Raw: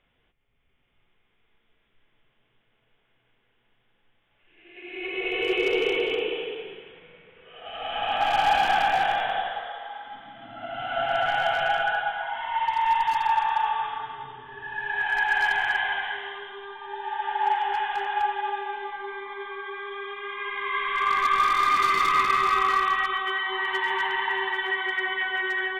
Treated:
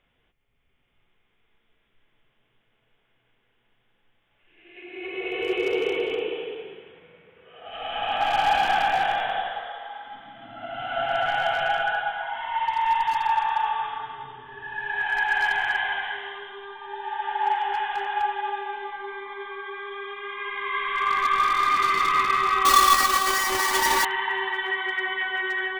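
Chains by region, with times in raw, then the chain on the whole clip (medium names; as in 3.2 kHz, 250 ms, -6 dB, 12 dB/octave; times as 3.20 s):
4.84–7.72 s: high-pass 44 Hz + peaking EQ 3 kHz -4.5 dB 1.5 oct
22.65–24.05 s: square wave that keeps the level + comb 3.5 ms, depth 75%
whole clip: none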